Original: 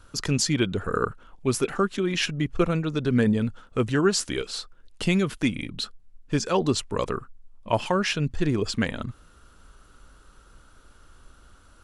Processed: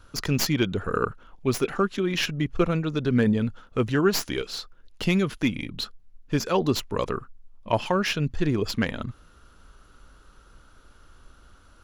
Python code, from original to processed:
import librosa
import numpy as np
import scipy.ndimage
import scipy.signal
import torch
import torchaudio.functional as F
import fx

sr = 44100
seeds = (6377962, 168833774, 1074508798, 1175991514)

y = fx.tracing_dist(x, sr, depth_ms=0.066)
y = fx.peak_eq(y, sr, hz=8400.0, db=-14.0, octaves=0.22)